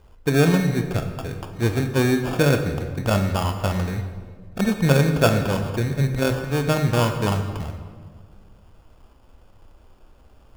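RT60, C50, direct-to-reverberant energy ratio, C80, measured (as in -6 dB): 1.7 s, 7.5 dB, 6.0 dB, 9.0 dB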